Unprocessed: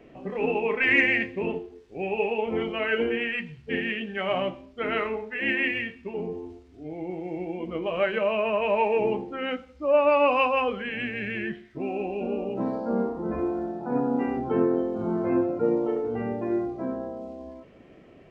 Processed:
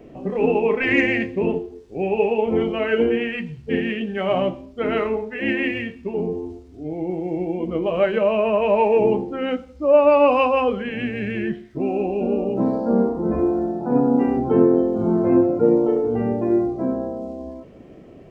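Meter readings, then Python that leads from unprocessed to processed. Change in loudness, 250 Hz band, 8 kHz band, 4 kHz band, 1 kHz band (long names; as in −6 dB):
+6.0 dB, +8.5 dB, can't be measured, +1.0 dB, +4.0 dB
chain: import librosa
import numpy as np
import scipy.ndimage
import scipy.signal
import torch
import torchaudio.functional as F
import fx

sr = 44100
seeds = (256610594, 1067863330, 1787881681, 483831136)

y = fx.peak_eq(x, sr, hz=2100.0, db=-9.5, octaves=2.4)
y = y * librosa.db_to_amplitude(9.0)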